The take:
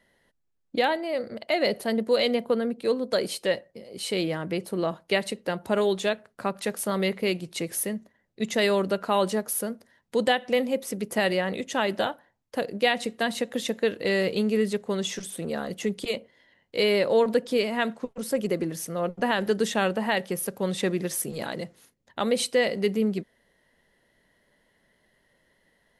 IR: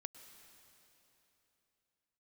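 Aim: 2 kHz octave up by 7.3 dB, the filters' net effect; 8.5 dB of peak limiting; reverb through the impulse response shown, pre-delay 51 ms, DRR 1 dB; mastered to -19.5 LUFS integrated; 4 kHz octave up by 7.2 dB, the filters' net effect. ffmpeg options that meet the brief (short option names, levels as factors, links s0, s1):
-filter_complex "[0:a]equalizer=f=2000:t=o:g=7,equalizer=f=4000:t=o:g=6.5,alimiter=limit=0.237:level=0:latency=1,asplit=2[s0][s1];[1:a]atrim=start_sample=2205,adelay=51[s2];[s1][s2]afir=irnorm=-1:irlink=0,volume=1.5[s3];[s0][s3]amix=inputs=2:normalize=0,volume=1.58"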